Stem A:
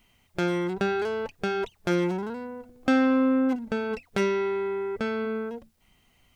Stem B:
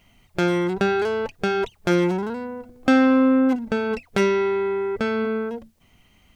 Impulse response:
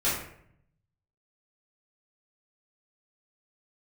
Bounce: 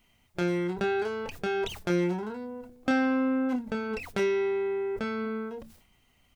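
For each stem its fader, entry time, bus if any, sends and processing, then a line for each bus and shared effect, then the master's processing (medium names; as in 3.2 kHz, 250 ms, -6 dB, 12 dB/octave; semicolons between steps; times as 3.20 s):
-3.5 dB, 0.00 s, no send, decay stretcher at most 86 dB/s
-16.0 dB, 28 ms, no send, none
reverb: none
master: none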